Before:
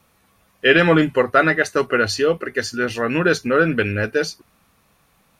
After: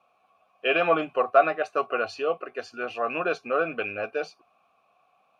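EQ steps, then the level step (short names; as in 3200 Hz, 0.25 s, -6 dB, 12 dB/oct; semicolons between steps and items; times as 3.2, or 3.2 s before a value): vowel filter a; +6.0 dB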